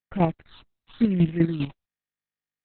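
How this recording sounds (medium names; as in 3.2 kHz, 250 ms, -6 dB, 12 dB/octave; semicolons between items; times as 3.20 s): a quantiser's noise floor 6-bit, dither none; phasing stages 6, 1 Hz, lowest notch 400–1200 Hz; chopped level 5 Hz, depth 60%, duty 25%; Opus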